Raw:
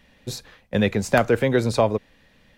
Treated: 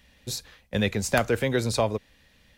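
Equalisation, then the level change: bell 63 Hz +9.5 dB 0.98 oct; high shelf 2700 Hz +10 dB; -6.0 dB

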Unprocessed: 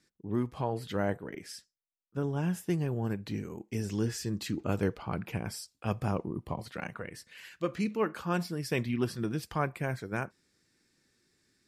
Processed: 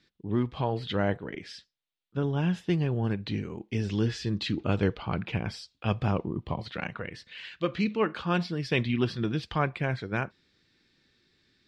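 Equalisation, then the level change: synth low-pass 3600 Hz, resonance Q 2.6; low shelf 110 Hz +5 dB; +2.5 dB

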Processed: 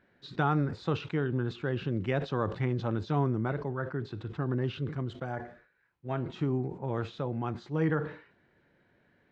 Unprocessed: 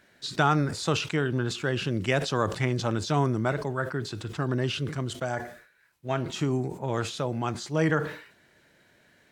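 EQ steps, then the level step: notch 630 Hz, Q 12; dynamic EQ 3800 Hz, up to +5 dB, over -52 dBFS, Q 4.9; tape spacing loss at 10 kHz 36 dB; -2.0 dB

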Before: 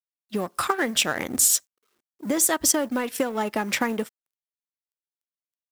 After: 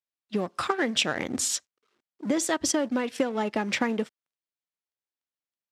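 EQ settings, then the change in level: HPF 76 Hz; LPF 5000 Hz 12 dB/oct; dynamic EQ 1200 Hz, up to -4 dB, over -36 dBFS, Q 0.84; 0.0 dB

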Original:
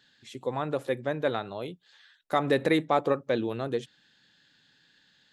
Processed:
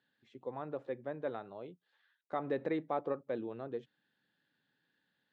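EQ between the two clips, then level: HPF 230 Hz 6 dB/oct; LPF 1000 Hz 6 dB/oct; air absorption 81 m; -8.0 dB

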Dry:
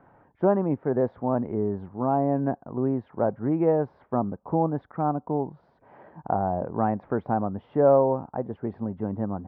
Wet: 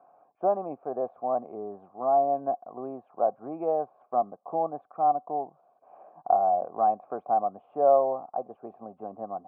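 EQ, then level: vowel filter a; HPF 120 Hz; high shelf 2000 Hz -11.5 dB; +8.5 dB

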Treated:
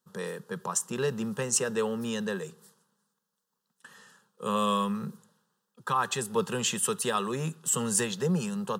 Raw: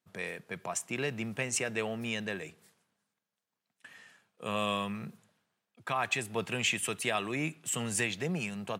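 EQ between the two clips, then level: fixed phaser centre 450 Hz, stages 8; +7.5 dB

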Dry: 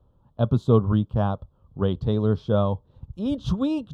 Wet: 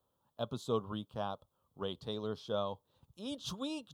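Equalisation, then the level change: dynamic EQ 1700 Hz, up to -5 dB, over -45 dBFS, Q 1.9; differentiator; tilt shelf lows +4 dB, about 1100 Hz; +8.0 dB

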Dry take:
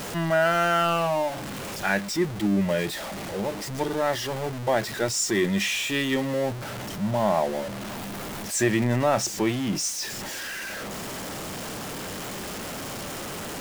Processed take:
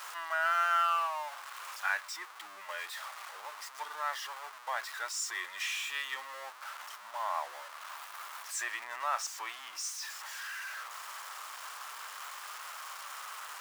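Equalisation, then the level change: ladder high-pass 980 Hz, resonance 55%; 0.0 dB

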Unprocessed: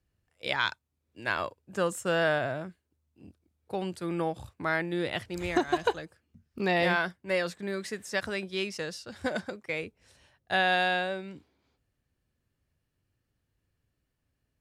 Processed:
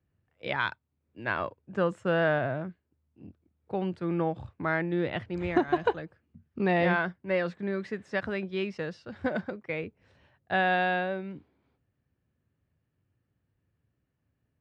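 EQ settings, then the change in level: BPF 100–2400 Hz; low shelf 210 Hz +8 dB; 0.0 dB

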